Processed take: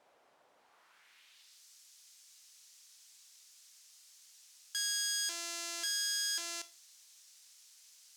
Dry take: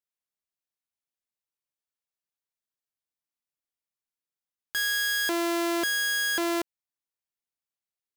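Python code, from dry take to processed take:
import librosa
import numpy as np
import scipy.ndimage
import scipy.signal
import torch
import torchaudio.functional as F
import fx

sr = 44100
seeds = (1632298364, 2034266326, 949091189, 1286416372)

y = fx.dmg_noise_colour(x, sr, seeds[0], colour='white', level_db=-54.0)
y = fx.filter_sweep_bandpass(y, sr, from_hz=650.0, to_hz=6000.0, start_s=0.56, end_s=1.63, q=1.5)
y = fx.rev_schroeder(y, sr, rt60_s=0.32, comb_ms=25, drr_db=14.5)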